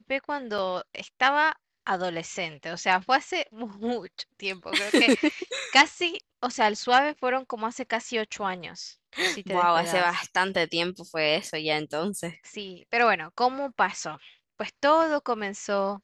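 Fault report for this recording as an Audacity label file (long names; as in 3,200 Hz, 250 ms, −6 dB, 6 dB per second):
0.580000	0.580000	drop-out 4.3 ms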